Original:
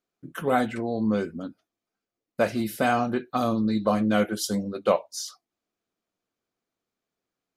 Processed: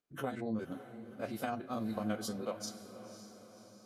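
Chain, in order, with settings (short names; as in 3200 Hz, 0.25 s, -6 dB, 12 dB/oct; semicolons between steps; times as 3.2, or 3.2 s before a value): stepped spectrum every 50 ms; compressor 2.5:1, threshold -34 dBFS, peak gain reduction 11.5 dB; granular stretch 0.51×, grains 96 ms; flange 0.71 Hz, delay 6.5 ms, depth 3 ms, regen +85%; diffused feedback echo 0.54 s, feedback 53%, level -12 dB; gain +1.5 dB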